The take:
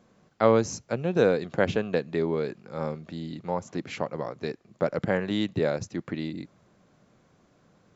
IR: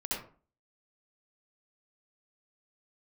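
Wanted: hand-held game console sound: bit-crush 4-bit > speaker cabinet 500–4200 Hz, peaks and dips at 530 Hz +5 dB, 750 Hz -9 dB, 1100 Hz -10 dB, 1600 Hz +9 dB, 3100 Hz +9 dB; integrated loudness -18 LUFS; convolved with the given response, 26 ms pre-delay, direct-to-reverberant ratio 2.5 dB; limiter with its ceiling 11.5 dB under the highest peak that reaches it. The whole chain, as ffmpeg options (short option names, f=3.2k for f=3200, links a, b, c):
-filter_complex "[0:a]alimiter=limit=-18dB:level=0:latency=1,asplit=2[a][b];[1:a]atrim=start_sample=2205,adelay=26[c];[b][c]afir=irnorm=-1:irlink=0,volume=-6.5dB[d];[a][d]amix=inputs=2:normalize=0,acrusher=bits=3:mix=0:aa=0.000001,highpass=500,equalizer=f=530:t=q:w=4:g=5,equalizer=f=750:t=q:w=4:g=-9,equalizer=f=1.1k:t=q:w=4:g=-10,equalizer=f=1.6k:t=q:w=4:g=9,equalizer=f=3.1k:t=q:w=4:g=9,lowpass=f=4.2k:w=0.5412,lowpass=f=4.2k:w=1.3066,volume=10.5dB"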